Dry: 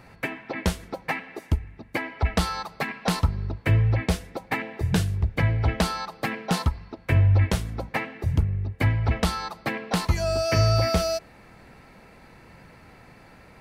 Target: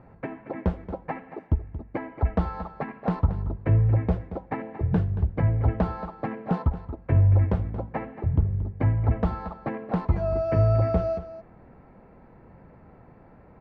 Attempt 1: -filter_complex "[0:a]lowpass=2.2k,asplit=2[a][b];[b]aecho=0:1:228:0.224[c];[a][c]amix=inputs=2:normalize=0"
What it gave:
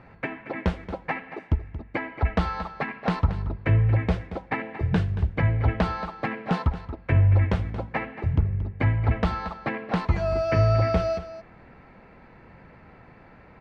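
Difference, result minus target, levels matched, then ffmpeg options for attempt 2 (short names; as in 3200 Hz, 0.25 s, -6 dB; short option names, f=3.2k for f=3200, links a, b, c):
2000 Hz band +9.5 dB
-filter_complex "[0:a]lowpass=940,asplit=2[a][b];[b]aecho=0:1:228:0.224[c];[a][c]amix=inputs=2:normalize=0"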